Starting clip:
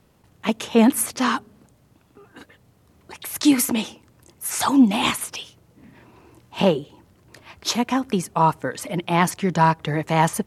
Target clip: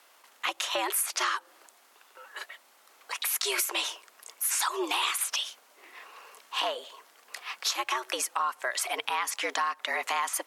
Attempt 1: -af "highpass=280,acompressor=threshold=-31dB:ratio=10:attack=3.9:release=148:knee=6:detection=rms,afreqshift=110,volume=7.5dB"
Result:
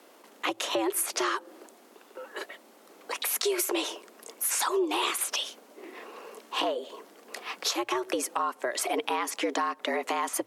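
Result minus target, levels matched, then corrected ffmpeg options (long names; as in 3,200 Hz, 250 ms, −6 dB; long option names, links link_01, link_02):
250 Hz band +10.5 dB
-af "highpass=880,acompressor=threshold=-31dB:ratio=10:attack=3.9:release=148:knee=6:detection=rms,afreqshift=110,volume=7.5dB"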